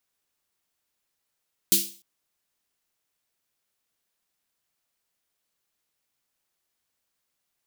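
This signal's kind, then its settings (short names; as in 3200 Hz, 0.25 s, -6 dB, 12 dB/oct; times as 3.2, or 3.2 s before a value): snare drum length 0.30 s, tones 200 Hz, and 340 Hz, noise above 3000 Hz, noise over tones 12 dB, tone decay 0.35 s, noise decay 0.39 s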